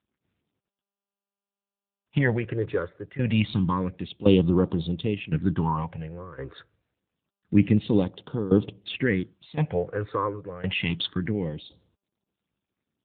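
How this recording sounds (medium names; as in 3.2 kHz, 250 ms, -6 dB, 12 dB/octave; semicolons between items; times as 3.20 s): tremolo saw down 0.94 Hz, depth 85%; phasing stages 6, 0.27 Hz, lowest notch 210–2000 Hz; AMR-NB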